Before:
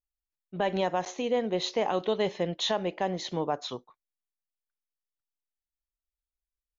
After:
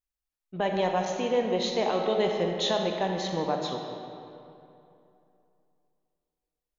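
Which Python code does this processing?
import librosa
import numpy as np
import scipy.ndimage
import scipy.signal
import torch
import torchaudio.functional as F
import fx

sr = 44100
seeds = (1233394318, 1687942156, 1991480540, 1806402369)

y = fx.rev_freeverb(x, sr, rt60_s=2.8, hf_ratio=0.65, predelay_ms=0, drr_db=2.5)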